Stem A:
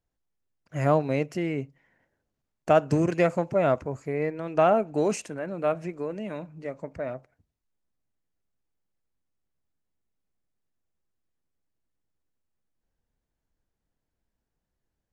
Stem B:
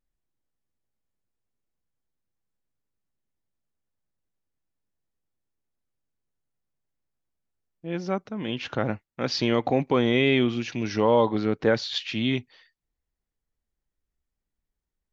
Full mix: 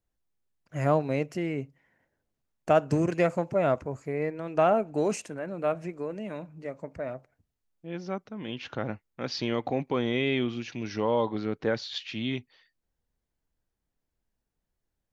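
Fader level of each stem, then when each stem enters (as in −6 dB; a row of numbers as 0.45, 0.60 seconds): −2.0, −6.0 decibels; 0.00, 0.00 seconds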